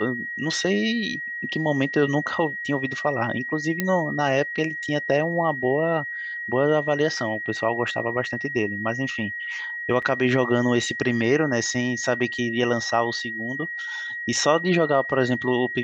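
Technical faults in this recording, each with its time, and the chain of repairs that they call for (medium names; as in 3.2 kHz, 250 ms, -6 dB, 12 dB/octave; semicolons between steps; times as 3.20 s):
whine 1.9 kHz -29 dBFS
3.80 s: pop -8 dBFS
10.02–10.03 s: dropout 5.1 ms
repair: de-click; band-stop 1.9 kHz, Q 30; interpolate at 10.02 s, 5.1 ms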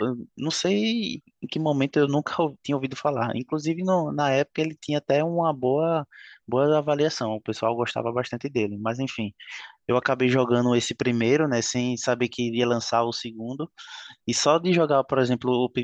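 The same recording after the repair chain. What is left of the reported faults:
nothing left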